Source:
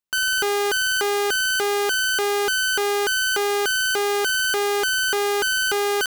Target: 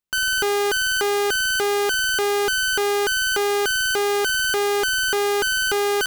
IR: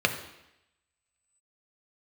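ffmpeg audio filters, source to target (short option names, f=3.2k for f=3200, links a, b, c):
-af "lowshelf=f=200:g=7.5"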